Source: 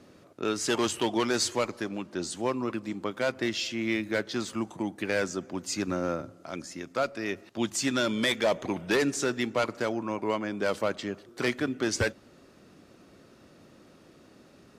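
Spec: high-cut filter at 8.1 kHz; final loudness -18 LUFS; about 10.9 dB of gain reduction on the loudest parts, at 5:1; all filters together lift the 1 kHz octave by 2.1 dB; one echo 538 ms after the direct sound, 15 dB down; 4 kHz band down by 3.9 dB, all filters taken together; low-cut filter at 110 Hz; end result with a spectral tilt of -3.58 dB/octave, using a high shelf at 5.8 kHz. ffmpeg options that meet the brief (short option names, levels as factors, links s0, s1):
-af "highpass=110,lowpass=8100,equalizer=f=1000:t=o:g=3,equalizer=f=4000:t=o:g=-7.5,highshelf=f=5800:g=6.5,acompressor=threshold=0.0224:ratio=5,aecho=1:1:538:0.178,volume=9.44"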